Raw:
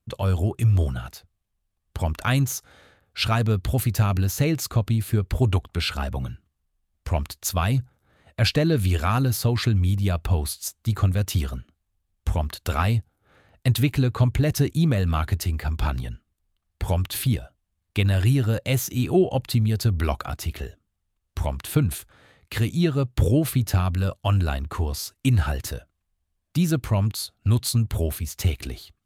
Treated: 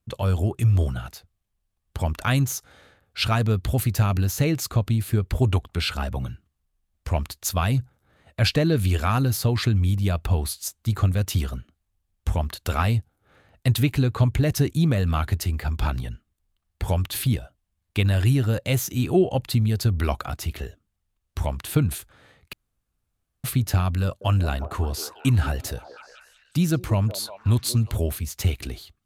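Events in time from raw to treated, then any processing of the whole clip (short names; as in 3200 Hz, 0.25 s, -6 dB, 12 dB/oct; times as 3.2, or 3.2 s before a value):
22.53–23.44 room tone
24.03–27.96 delay with a stepping band-pass 0.181 s, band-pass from 450 Hz, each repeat 0.7 oct, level -7 dB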